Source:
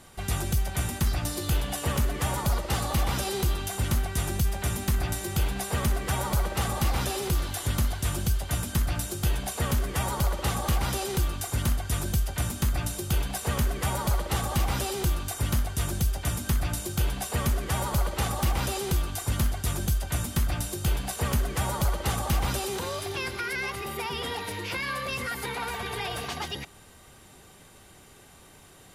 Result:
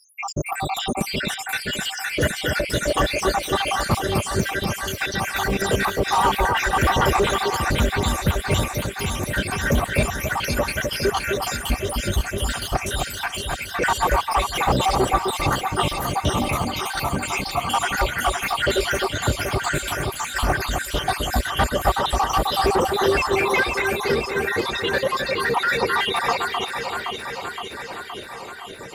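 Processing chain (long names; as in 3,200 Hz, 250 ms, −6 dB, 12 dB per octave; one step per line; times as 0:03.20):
time-frequency cells dropped at random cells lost 85%
mid-hump overdrive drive 23 dB, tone 1,700 Hz, clips at −16.5 dBFS
delay that swaps between a low-pass and a high-pass 259 ms, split 2,100 Hz, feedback 83%, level −4 dB
level +8 dB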